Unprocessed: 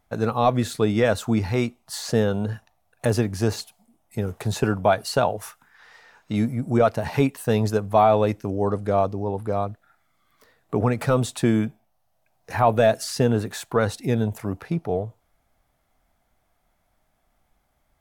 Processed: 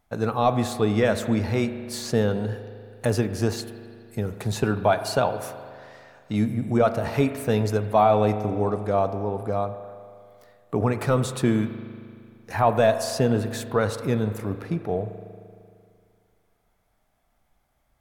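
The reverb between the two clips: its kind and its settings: spring tank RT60 2.3 s, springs 38 ms, chirp 45 ms, DRR 9.5 dB; gain -1.5 dB

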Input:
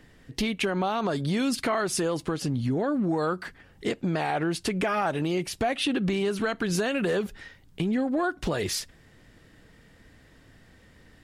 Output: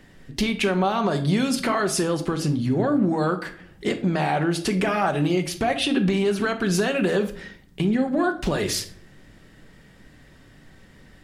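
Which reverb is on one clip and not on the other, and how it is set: shoebox room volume 740 m³, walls furnished, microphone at 1.1 m; gain +3 dB

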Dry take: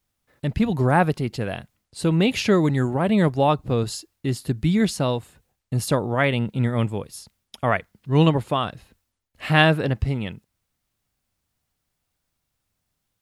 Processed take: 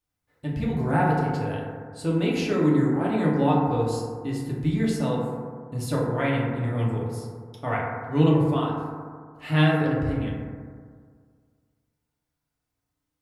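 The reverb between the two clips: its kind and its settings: FDN reverb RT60 1.9 s, low-frequency decay 1×, high-frequency decay 0.25×, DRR -5.5 dB; gain -11 dB

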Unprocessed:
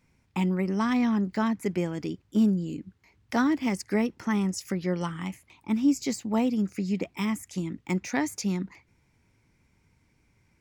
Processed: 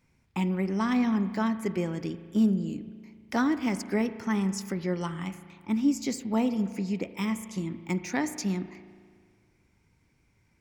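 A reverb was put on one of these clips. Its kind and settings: spring tank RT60 1.9 s, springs 36 ms, chirp 65 ms, DRR 11.5 dB; gain -1.5 dB

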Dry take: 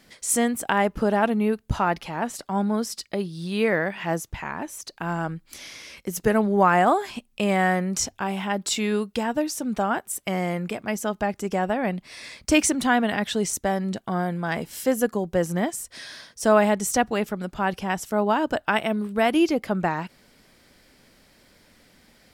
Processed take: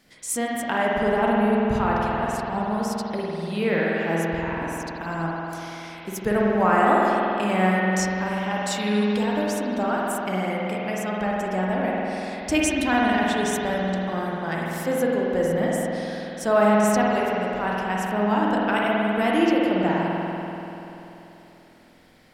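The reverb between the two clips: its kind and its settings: spring tank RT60 3.3 s, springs 48 ms, chirp 35 ms, DRR -4.5 dB; gain -4.5 dB

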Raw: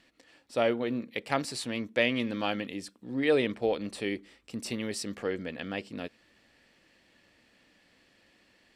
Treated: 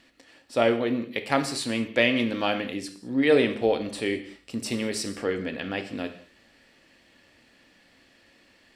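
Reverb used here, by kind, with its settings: non-linear reverb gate 0.24 s falling, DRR 7 dB; gain +4.5 dB

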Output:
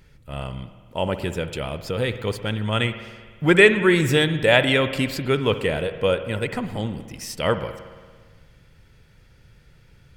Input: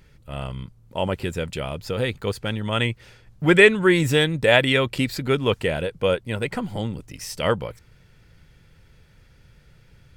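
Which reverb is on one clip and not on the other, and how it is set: spring tank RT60 1.6 s, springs 56 ms, chirp 65 ms, DRR 10.5 dB

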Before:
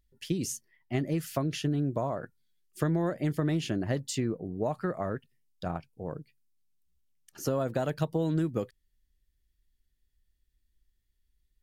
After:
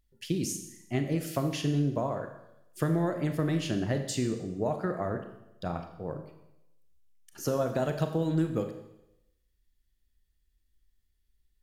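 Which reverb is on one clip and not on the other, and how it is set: Schroeder reverb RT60 0.87 s, combs from 28 ms, DRR 6 dB

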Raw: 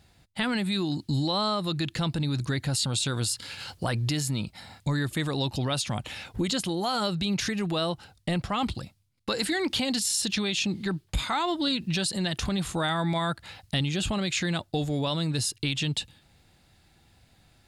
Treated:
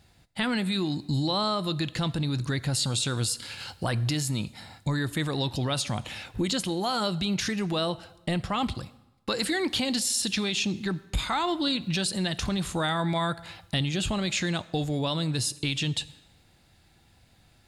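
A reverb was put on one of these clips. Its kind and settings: plate-style reverb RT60 1 s, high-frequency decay 0.85×, DRR 16.5 dB

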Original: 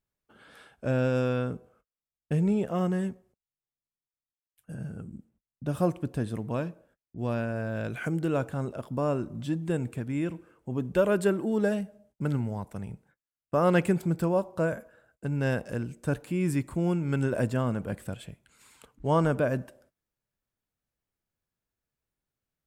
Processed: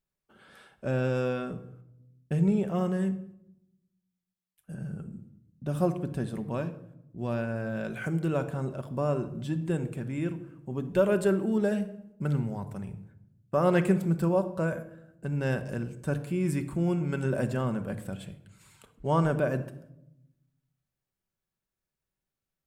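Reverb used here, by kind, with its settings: shoebox room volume 2500 m³, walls furnished, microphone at 1.1 m; gain -2 dB

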